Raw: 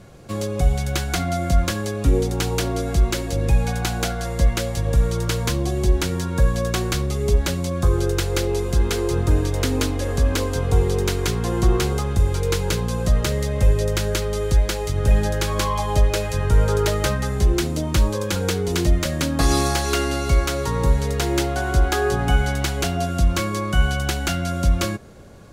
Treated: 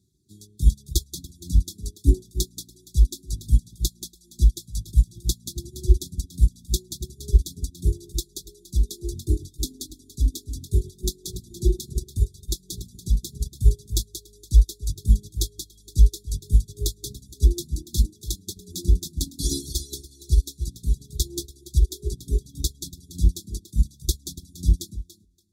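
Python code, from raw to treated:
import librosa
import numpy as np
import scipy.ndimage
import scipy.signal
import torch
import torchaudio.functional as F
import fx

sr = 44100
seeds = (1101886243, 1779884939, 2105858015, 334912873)

y = scipy.signal.sosfilt(scipy.signal.butter(4, 44.0, 'highpass', fs=sr, output='sos'), x)
y = fx.high_shelf(y, sr, hz=3800.0, db=8.5)
y = fx.echo_feedback(y, sr, ms=286, feedback_pct=29, wet_db=-4.5)
y = fx.dereverb_blind(y, sr, rt60_s=1.7)
y = fx.brickwall_bandstop(y, sr, low_hz=410.0, high_hz=3300.0)
y = fx.peak_eq(y, sr, hz=63.0, db=2.5, octaves=0.77)
y = fx.upward_expand(y, sr, threshold_db=-28.0, expansion=2.5)
y = y * 10.0 ** (3.5 / 20.0)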